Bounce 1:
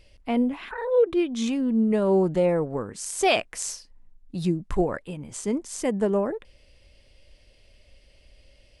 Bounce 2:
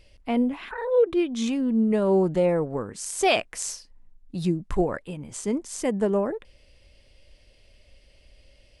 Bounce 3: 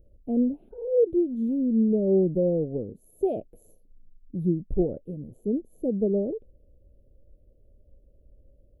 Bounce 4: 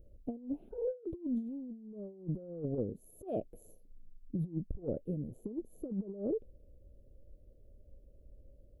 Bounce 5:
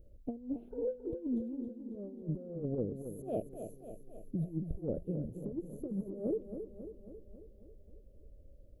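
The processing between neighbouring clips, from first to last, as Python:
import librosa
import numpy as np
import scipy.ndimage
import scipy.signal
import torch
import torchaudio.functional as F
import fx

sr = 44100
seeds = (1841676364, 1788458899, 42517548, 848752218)

y1 = x
y2 = scipy.signal.sosfilt(scipy.signal.cheby2(4, 40, [1000.0, 9000.0], 'bandstop', fs=sr, output='sos'), y1)
y3 = fx.over_compress(y2, sr, threshold_db=-30.0, ratio=-0.5)
y3 = F.gain(torch.from_numpy(y3), -7.0).numpy()
y4 = fx.echo_feedback(y3, sr, ms=272, feedback_pct=60, wet_db=-9)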